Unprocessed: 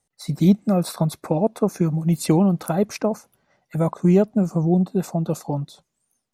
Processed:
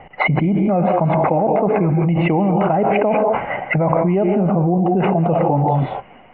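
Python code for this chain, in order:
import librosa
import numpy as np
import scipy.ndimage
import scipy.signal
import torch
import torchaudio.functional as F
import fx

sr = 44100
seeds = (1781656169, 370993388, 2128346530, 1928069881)

y = scipy.signal.sosfilt(scipy.signal.cheby1(6, 9, 3000.0, 'lowpass', fs=sr, output='sos'), x)
y = fx.hum_notches(y, sr, base_hz=60, count=2)
y = fx.rev_gated(y, sr, seeds[0], gate_ms=220, shape='rising', drr_db=7.5)
y = fx.env_flatten(y, sr, amount_pct=100)
y = y * 10.0 ** (3.0 / 20.0)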